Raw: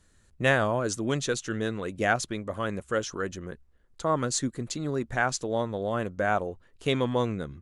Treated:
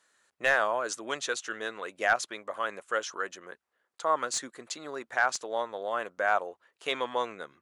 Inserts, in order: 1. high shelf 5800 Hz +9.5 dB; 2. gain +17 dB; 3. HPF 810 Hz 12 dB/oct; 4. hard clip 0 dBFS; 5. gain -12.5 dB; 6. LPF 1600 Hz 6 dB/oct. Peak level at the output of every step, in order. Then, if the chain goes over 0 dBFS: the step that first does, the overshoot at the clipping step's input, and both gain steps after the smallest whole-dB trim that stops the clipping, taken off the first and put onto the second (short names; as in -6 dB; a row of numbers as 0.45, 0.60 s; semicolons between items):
-8.5, +8.5, +8.0, 0.0, -12.5, -13.5 dBFS; step 2, 8.0 dB; step 2 +9 dB, step 5 -4.5 dB